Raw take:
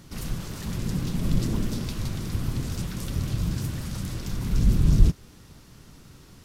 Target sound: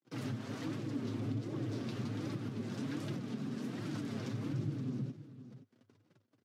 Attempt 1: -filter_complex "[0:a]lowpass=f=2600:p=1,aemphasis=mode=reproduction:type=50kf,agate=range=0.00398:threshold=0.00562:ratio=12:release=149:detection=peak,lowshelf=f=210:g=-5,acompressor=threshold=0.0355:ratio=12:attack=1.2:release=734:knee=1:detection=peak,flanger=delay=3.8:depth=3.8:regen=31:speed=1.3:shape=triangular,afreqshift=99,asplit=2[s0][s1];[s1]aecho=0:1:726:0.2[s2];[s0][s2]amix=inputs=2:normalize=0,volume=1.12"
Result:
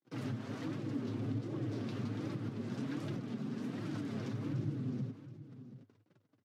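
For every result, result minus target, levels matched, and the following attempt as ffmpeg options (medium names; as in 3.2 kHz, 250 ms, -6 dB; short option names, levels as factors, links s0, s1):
echo 204 ms late; 4 kHz band -3.0 dB
-filter_complex "[0:a]lowpass=f=2600:p=1,aemphasis=mode=reproduction:type=50kf,agate=range=0.00398:threshold=0.00562:ratio=12:release=149:detection=peak,lowshelf=f=210:g=-5,acompressor=threshold=0.0355:ratio=12:attack=1.2:release=734:knee=1:detection=peak,flanger=delay=3.8:depth=3.8:regen=31:speed=1.3:shape=triangular,afreqshift=99,asplit=2[s0][s1];[s1]aecho=0:1:522:0.2[s2];[s0][s2]amix=inputs=2:normalize=0,volume=1.12"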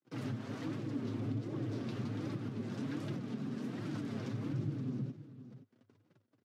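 4 kHz band -3.0 dB
-filter_complex "[0:a]lowpass=f=5400:p=1,aemphasis=mode=reproduction:type=50kf,agate=range=0.00398:threshold=0.00562:ratio=12:release=149:detection=peak,lowshelf=f=210:g=-5,acompressor=threshold=0.0355:ratio=12:attack=1.2:release=734:knee=1:detection=peak,flanger=delay=3.8:depth=3.8:regen=31:speed=1.3:shape=triangular,afreqshift=99,asplit=2[s0][s1];[s1]aecho=0:1:522:0.2[s2];[s0][s2]amix=inputs=2:normalize=0,volume=1.12"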